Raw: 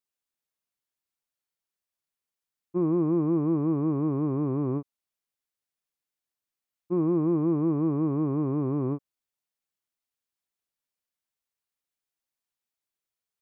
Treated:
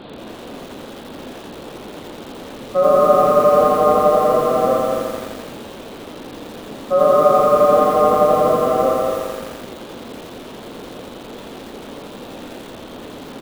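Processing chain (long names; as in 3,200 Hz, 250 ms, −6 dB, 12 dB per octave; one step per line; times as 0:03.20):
linear delta modulator 16 kbit/s, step −36.5 dBFS
on a send: ambience of single reflections 19 ms −7 dB, 42 ms −9.5 dB
on the sum: dynamic equaliser 1,300 Hz, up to +4 dB, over −43 dBFS, Q 0.72
ring modulation 910 Hz
graphic EQ with 10 bands 250 Hz +12 dB, 500 Hz +8 dB, 2,000 Hz −12 dB
slap from a distant wall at 37 metres, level −6 dB
feedback echo at a low word length 85 ms, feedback 80%, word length 7 bits, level −3.5 dB
level +6 dB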